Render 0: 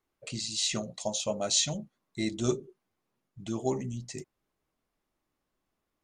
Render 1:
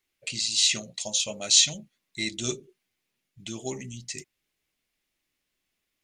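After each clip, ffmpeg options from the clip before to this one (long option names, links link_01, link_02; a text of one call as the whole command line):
ffmpeg -i in.wav -af "highshelf=frequency=1600:width_type=q:width=1.5:gain=11,volume=-4dB" out.wav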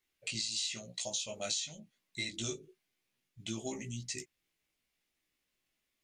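ffmpeg -i in.wav -af "acompressor=threshold=-30dB:ratio=16,flanger=delay=16:depth=2.8:speed=0.95" out.wav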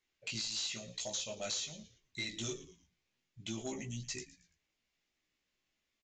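ffmpeg -i in.wav -filter_complex "[0:a]asplit=4[link_01][link_02][link_03][link_04];[link_02]adelay=113,afreqshift=-99,volume=-17.5dB[link_05];[link_03]adelay=226,afreqshift=-198,volume=-26.1dB[link_06];[link_04]adelay=339,afreqshift=-297,volume=-34.8dB[link_07];[link_01][link_05][link_06][link_07]amix=inputs=4:normalize=0,aresample=16000,asoftclip=type=tanh:threshold=-30.5dB,aresample=44100" out.wav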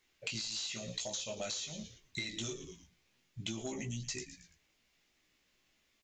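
ffmpeg -i in.wav -af "acompressor=threshold=-46dB:ratio=12,volume=9.5dB" out.wav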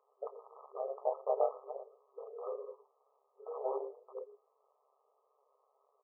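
ffmpeg -i in.wav -af "tremolo=f=140:d=0.919,afftfilt=real='re*between(b*sr/4096,390,1300)':imag='im*between(b*sr/4096,390,1300)':win_size=4096:overlap=0.75,volume=15.5dB" out.wav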